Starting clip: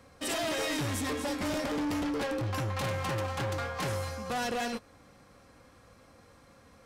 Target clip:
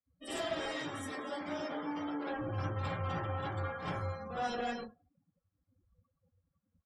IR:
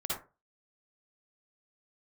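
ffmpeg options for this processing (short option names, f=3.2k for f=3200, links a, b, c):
-filter_complex "[0:a]asettb=1/sr,asplit=3[a][b][c];[a]atrim=end=0.684[d];[b]atrim=start=0.68:end=2.29,asetpts=PTS-STARTPTS,afade=t=in:d=0.004:c=qsin,afade=t=out:st=1.606:d=0.004:c=qsin,highpass=f=350:p=1[e];[c]atrim=start=2.286[f];[d][e]acrossfade=d=0.004:c1=hsin:c2=qsin[g];[g][f]acrossfade=d=0.004:c1=qsin:c2=hsin,aecho=1:1:104|208|312|416:0.0841|0.0463|0.0255|0.014[h];[1:a]atrim=start_sample=2205[i];[h][i]afir=irnorm=-1:irlink=0,afftdn=nr=34:nf=-39,volume=-8.5dB"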